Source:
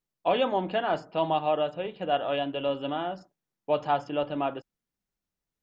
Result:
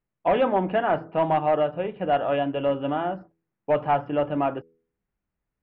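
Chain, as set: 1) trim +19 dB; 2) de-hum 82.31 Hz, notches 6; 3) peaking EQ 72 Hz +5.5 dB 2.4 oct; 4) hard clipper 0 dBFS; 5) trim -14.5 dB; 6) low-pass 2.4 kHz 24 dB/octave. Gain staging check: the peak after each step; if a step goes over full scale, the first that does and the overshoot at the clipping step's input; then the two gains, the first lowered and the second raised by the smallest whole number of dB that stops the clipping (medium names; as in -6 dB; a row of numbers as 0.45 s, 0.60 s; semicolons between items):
+8.0 dBFS, +8.0 dBFS, +8.5 dBFS, 0.0 dBFS, -14.5 dBFS, -13.0 dBFS; step 1, 8.5 dB; step 1 +10 dB, step 5 -5.5 dB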